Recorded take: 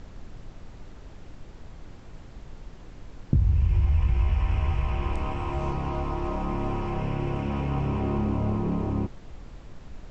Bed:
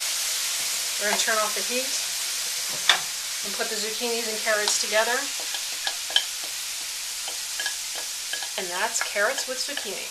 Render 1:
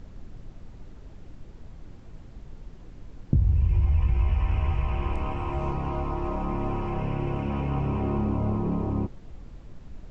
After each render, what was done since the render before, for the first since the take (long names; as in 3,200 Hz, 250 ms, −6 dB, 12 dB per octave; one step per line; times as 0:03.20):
broadband denoise 6 dB, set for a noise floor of −46 dBFS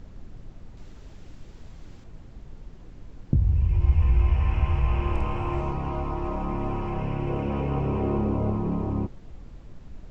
0:00.77–0:02.04: high-shelf EQ 2,000 Hz +8 dB
0:03.76–0:05.61: double-tracking delay 49 ms −2 dB
0:07.28–0:08.51: parametric band 460 Hz +7 dB 0.7 octaves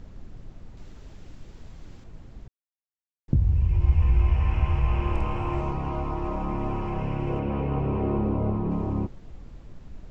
0:02.48–0:03.28: silence
0:07.39–0:08.71: high-frequency loss of the air 150 metres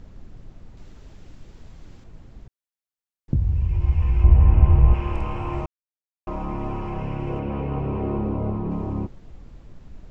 0:04.24–0:04.94: tilt shelving filter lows +9 dB, about 1,200 Hz
0:05.66–0:06.27: silence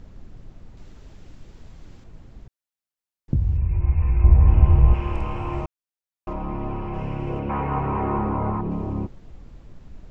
0:03.57–0:04.47: Butterworth low-pass 2,600 Hz 72 dB per octave
0:06.33–0:06.94: high-frequency loss of the air 150 metres
0:07.49–0:08.61: flat-topped bell 1,300 Hz +11 dB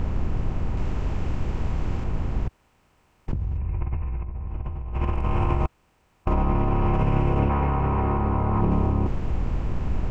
compressor on every frequency bin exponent 0.6
compressor whose output falls as the input rises −23 dBFS, ratio −1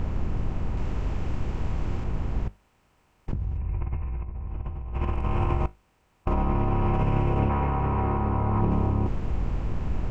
tuned comb filter 51 Hz, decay 0.24 s, mix 40%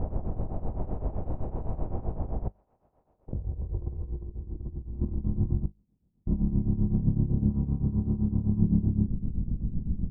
shaped tremolo triangle 7.8 Hz, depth 85%
low-pass filter sweep 680 Hz → 210 Hz, 0:02.96–0:05.49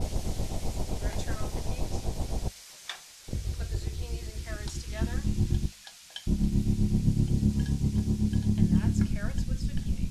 mix in bed −20 dB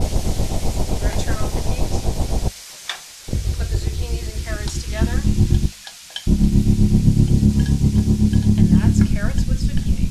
level +11 dB
brickwall limiter −2 dBFS, peak gain reduction 2.5 dB